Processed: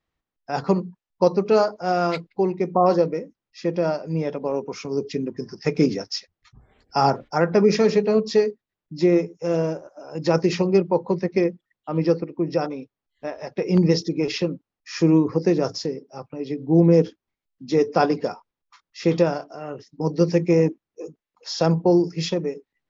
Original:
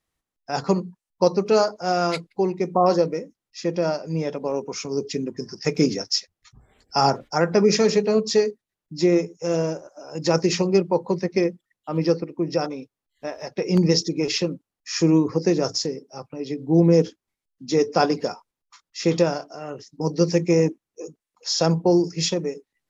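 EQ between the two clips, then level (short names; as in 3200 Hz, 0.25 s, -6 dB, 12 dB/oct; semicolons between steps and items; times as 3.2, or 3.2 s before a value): air absorption 150 m; +1.0 dB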